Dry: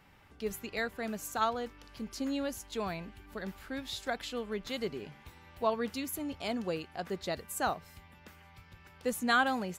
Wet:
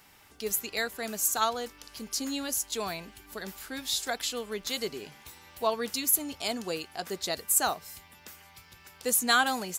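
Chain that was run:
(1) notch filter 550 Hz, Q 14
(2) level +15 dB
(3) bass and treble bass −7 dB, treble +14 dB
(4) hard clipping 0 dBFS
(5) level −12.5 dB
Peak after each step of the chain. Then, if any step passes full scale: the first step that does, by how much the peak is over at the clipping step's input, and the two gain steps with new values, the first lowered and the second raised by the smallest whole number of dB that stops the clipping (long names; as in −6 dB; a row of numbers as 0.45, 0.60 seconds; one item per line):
−15.5, −0.5, +3.0, 0.0, −12.5 dBFS
step 3, 3.0 dB
step 2 +12 dB, step 5 −9.5 dB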